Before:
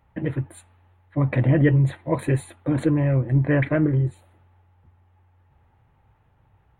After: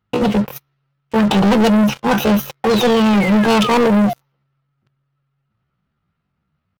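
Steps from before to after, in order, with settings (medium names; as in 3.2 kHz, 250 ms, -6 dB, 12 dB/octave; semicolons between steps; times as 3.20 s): painted sound fall, 2.71–4.15 s, 440–2800 Hz -37 dBFS; waveshaping leveller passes 5; pitch shift +7.5 st; trim -1.5 dB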